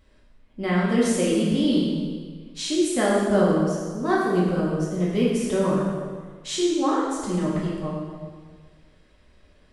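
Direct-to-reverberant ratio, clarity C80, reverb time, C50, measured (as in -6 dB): -6.5 dB, 1.5 dB, 1.6 s, -0.5 dB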